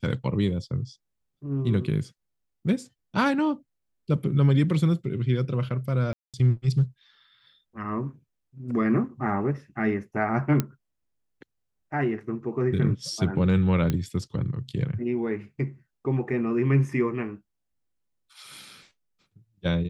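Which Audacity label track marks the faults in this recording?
6.130000	6.340000	gap 0.207 s
10.600000	10.600000	pop -10 dBFS
13.900000	13.900000	pop -13 dBFS

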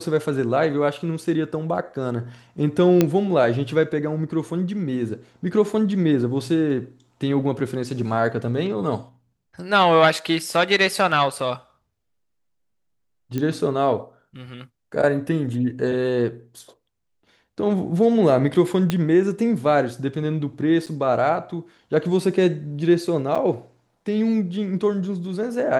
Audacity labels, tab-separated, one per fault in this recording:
3.010000	3.010000	pop -4 dBFS
13.380000	13.380000	pop -13 dBFS
18.900000	18.900000	pop -8 dBFS
20.860000	20.870000	gap 7.5 ms
23.350000	23.350000	gap 4.8 ms

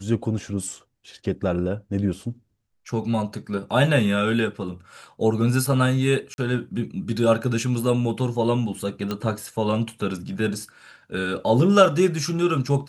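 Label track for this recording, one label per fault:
6.340000	6.380000	gap 41 ms
9.110000	9.110000	pop -14 dBFS

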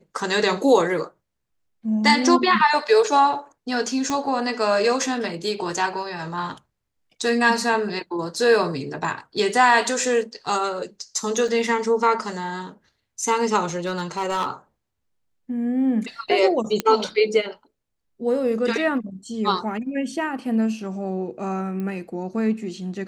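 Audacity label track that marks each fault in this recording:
4.100000	4.100000	pop -11 dBFS
11.480000	11.480000	gap 3.6 ms
13.680000	14.480000	clipped -20 dBFS
16.800000	16.800000	pop -7 dBFS
21.800000	21.800000	pop -20 dBFS

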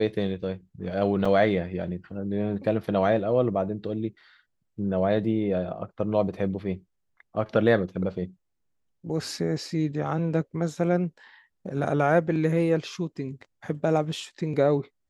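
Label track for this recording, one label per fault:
1.250000	1.250000	gap 4.6 ms

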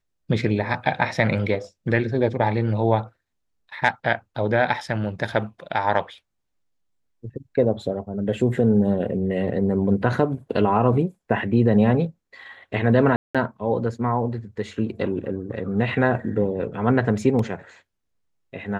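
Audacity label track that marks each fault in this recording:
13.160000	13.350000	gap 0.186 s

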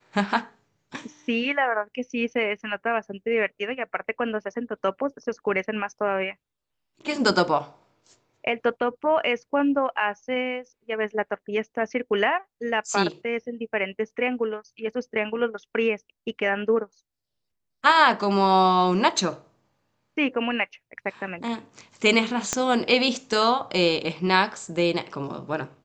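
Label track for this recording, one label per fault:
22.530000	22.530000	pop -9 dBFS

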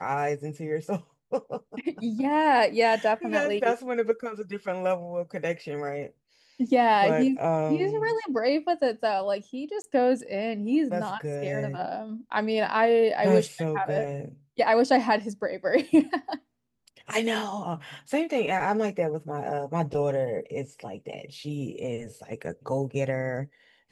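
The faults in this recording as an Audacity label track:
9.820000	9.840000	gap 20 ms

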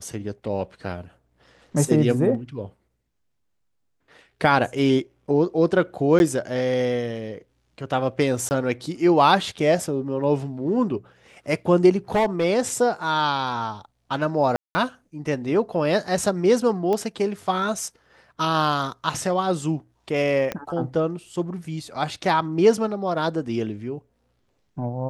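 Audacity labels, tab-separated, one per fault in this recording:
6.190000	6.200000	gap 11 ms
8.490000	8.510000	gap 19 ms
12.140000	12.450000	clipped -16 dBFS
14.560000	14.750000	gap 0.19 s
16.930000	16.930000	pop -14 dBFS
20.520000	20.520000	pop -12 dBFS

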